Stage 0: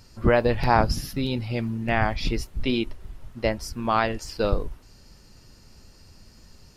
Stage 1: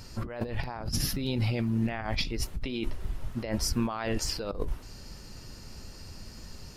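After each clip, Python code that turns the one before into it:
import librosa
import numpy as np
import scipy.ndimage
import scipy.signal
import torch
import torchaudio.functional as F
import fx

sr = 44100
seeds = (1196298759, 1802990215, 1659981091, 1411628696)

y = fx.over_compress(x, sr, threshold_db=-31.0, ratio=-1.0)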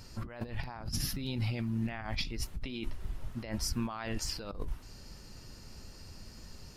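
y = fx.dynamic_eq(x, sr, hz=470.0, q=1.3, threshold_db=-48.0, ratio=4.0, max_db=-6)
y = F.gain(torch.from_numpy(y), -4.5).numpy()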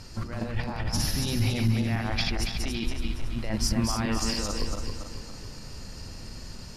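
y = fx.reverse_delay_fb(x, sr, ms=140, feedback_pct=67, wet_db=-3.0)
y = scipy.signal.sosfilt(scipy.signal.butter(2, 11000.0, 'lowpass', fs=sr, output='sos'), y)
y = F.gain(torch.from_numpy(y), 6.0).numpy()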